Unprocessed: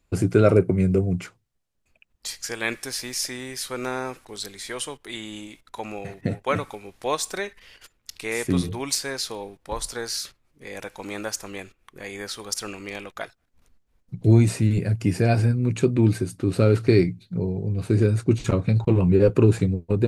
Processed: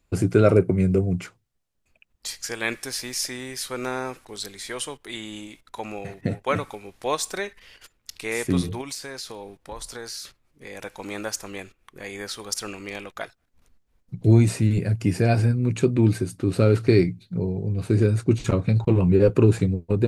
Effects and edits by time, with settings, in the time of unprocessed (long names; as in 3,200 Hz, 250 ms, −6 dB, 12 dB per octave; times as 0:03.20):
0:08.81–0:10.83: downward compressor 2.5 to 1, threshold −34 dBFS